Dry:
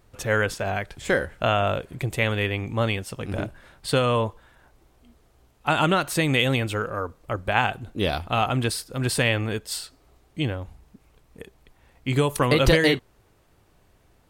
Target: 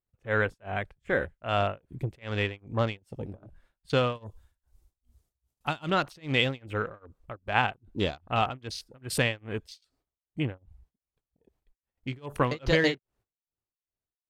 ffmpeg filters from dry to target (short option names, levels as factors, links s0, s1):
-filter_complex "[0:a]asettb=1/sr,asplit=3[s0][s1][s2];[s0]atrim=end=4.154[s3];[s1]atrim=start=4.15:end=5.9,asetpts=PTS-STARTPTS,afade=t=in:d=0.004:c=qsin,afade=t=out:st=1.746:d=0.004:c=qsin,bass=f=250:g=4,treble=f=4000:g=14[s4];[s2]atrim=start=5.896[s5];[s3][s4]acrossfade=d=0.004:c1=hsin:c2=qsin[s6];[s6][s5]acrossfade=d=0.004:c1=qsin:c2=hsin,agate=range=0.158:threshold=0.002:ratio=16:detection=peak,afwtdn=0.0178,tremolo=f=2.5:d=0.98,volume=0.75"